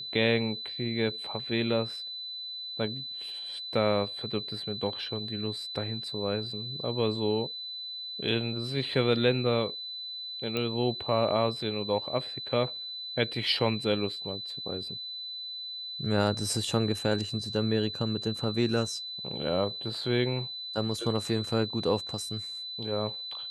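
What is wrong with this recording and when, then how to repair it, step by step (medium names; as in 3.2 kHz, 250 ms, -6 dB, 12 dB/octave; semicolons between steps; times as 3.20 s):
whine 4 kHz -36 dBFS
10.57 s: pop -17 dBFS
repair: de-click; band-stop 4 kHz, Q 30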